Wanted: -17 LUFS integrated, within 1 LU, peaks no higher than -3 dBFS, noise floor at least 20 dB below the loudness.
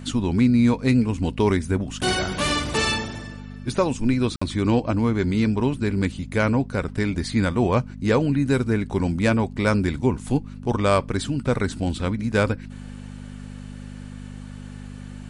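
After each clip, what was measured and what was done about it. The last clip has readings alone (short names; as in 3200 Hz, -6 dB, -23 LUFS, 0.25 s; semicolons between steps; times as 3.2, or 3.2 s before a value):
dropouts 1; longest dropout 55 ms; hum 50 Hz; harmonics up to 250 Hz; hum level -35 dBFS; loudness -22.5 LUFS; peak -7.0 dBFS; loudness target -17.0 LUFS
-> interpolate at 4.36, 55 ms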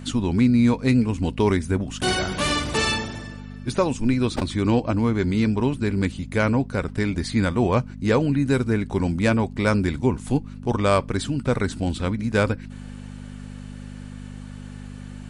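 dropouts 0; hum 50 Hz; harmonics up to 200 Hz; hum level -36 dBFS
-> de-hum 50 Hz, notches 4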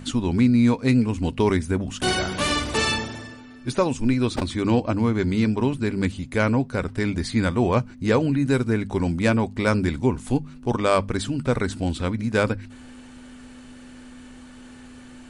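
hum none; loudness -23.0 LUFS; peak -6.5 dBFS; loudness target -17.0 LUFS
-> gain +6 dB; limiter -3 dBFS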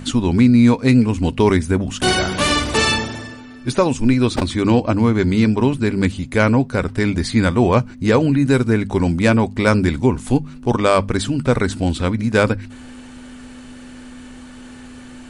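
loudness -17.0 LUFS; peak -3.0 dBFS; noise floor -38 dBFS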